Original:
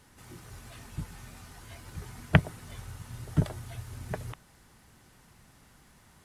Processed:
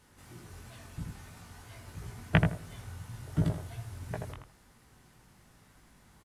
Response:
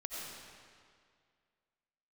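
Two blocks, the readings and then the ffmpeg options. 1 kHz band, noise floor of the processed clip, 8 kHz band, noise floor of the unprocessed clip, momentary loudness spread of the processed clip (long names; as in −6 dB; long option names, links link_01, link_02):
−1.5 dB, −62 dBFS, −3.0 dB, −60 dBFS, 22 LU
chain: -filter_complex "[0:a]flanger=delay=17.5:depth=4:speed=2.9,asplit=2[link_01][link_02];[link_02]adelay=81,lowpass=frequency=1200:poles=1,volume=-3dB,asplit=2[link_03][link_04];[link_04]adelay=81,lowpass=frequency=1200:poles=1,volume=0.25,asplit=2[link_05][link_06];[link_06]adelay=81,lowpass=frequency=1200:poles=1,volume=0.25,asplit=2[link_07][link_08];[link_08]adelay=81,lowpass=frequency=1200:poles=1,volume=0.25[link_09];[link_03][link_05][link_07][link_09]amix=inputs=4:normalize=0[link_10];[link_01][link_10]amix=inputs=2:normalize=0"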